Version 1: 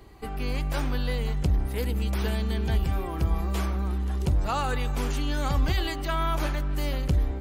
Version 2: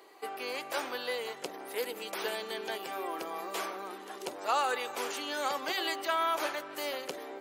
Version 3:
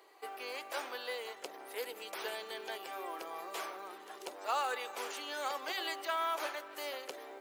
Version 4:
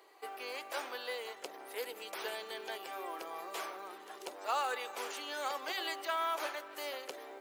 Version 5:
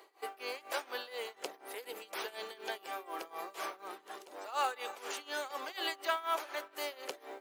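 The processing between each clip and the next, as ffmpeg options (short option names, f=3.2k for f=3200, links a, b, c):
-af "highpass=f=390:w=0.5412,highpass=f=390:w=1.3066"
-af "acrusher=bits=6:mode=log:mix=0:aa=0.000001,bass=f=250:g=-15,treble=f=4k:g=-1,volume=-4.5dB"
-af anull
-af "tremolo=f=4.1:d=0.88,volume=4dB"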